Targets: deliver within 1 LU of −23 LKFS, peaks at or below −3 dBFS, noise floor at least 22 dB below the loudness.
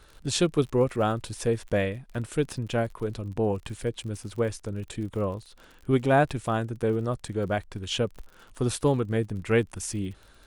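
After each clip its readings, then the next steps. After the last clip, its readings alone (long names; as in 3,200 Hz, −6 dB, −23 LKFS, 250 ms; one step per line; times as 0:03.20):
crackle rate 49 per second; integrated loudness −28.0 LKFS; sample peak −10.5 dBFS; target loudness −23.0 LKFS
→ click removal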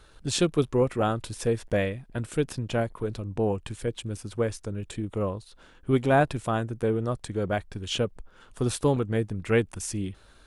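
crackle rate 0.19 per second; integrated loudness −28.0 LKFS; sample peak −10.5 dBFS; target loudness −23.0 LKFS
→ level +5 dB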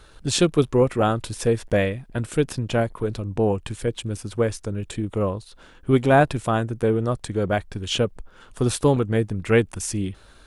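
integrated loudness −23.0 LKFS; sample peak −5.5 dBFS; background noise floor −50 dBFS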